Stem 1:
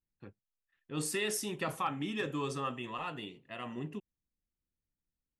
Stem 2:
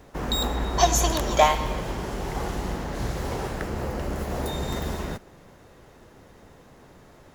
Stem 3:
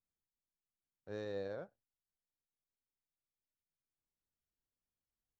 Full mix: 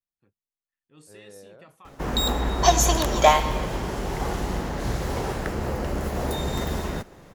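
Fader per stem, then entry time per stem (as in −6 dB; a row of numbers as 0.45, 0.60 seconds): −16.5, +2.0, −6.0 decibels; 0.00, 1.85, 0.00 seconds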